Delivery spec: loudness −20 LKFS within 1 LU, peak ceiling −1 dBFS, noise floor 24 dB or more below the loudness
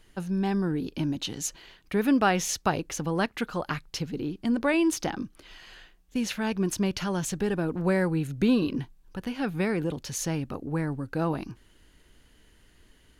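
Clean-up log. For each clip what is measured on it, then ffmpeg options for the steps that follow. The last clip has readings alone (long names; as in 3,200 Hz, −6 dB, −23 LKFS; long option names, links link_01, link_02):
integrated loudness −28.5 LKFS; sample peak −11.0 dBFS; target loudness −20.0 LKFS
→ -af "volume=8.5dB"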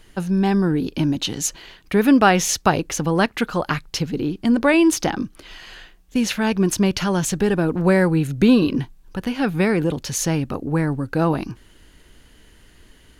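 integrated loudness −20.0 LKFS; sample peak −2.5 dBFS; background noise floor −51 dBFS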